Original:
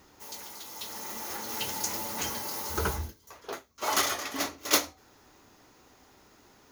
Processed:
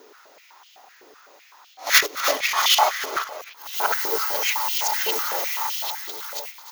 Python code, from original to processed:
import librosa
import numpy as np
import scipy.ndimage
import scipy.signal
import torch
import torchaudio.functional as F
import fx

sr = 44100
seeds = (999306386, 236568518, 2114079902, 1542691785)

p1 = np.flip(x).copy()
p2 = fx.high_shelf(p1, sr, hz=3900.0, db=8.5)
p3 = fx.level_steps(p2, sr, step_db=18)
p4 = p2 + (p3 * 10.0 ** (-1.5 / 20.0))
p5 = fx.peak_eq(p4, sr, hz=9400.0, db=-11.5, octaves=1.1)
p6 = p5 + fx.echo_multitap(p5, sr, ms=(225, 297, 308, 494), db=(-19.0, -16.5, -14.5, -18.0), dry=0)
p7 = 10.0 ** (-10.0 / 20.0) * np.tanh(p6 / 10.0 ** (-10.0 / 20.0))
p8 = fx.filter_held_highpass(p7, sr, hz=7.9, low_hz=420.0, high_hz=3000.0)
y = p8 * 10.0 ** (3.0 / 20.0)